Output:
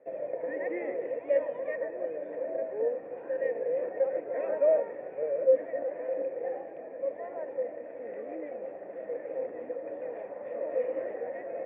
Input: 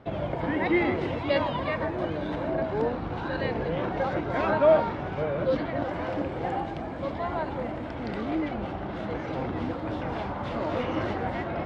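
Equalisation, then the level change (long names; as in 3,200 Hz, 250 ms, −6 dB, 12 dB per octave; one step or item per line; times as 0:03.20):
formant resonators in series e
loudspeaker in its box 250–3,200 Hz, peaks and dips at 290 Hz +3 dB, 460 Hz +7 dB, 670 Hz +6 dB, 1,000 Hz +3 dB
0.0 dB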